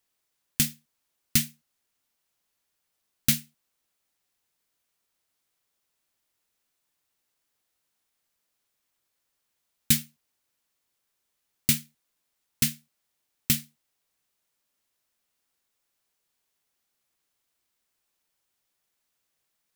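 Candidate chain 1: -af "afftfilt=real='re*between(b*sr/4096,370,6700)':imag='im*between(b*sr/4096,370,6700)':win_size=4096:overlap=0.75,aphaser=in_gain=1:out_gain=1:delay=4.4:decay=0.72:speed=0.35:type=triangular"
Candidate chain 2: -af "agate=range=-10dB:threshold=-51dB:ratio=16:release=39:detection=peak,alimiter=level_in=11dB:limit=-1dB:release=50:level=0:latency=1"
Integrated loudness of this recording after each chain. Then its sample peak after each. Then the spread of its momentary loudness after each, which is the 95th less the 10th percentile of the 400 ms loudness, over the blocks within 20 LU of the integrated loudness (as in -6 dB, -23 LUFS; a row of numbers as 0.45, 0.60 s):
-30.0, -19.5 LUFS; -10.5, -1.0 dBFS; 8, 10 LU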